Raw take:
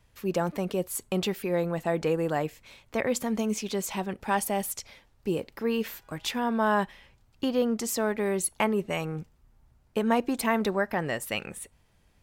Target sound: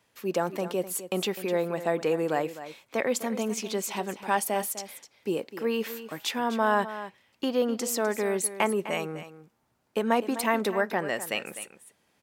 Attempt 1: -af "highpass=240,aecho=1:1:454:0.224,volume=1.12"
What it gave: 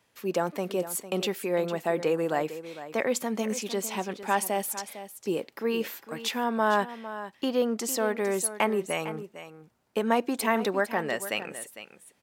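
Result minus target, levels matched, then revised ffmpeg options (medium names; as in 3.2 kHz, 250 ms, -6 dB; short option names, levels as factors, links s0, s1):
echo 201 ms late
-af "highpass=240,aecho=1:1:253:0.224,volume=1.12"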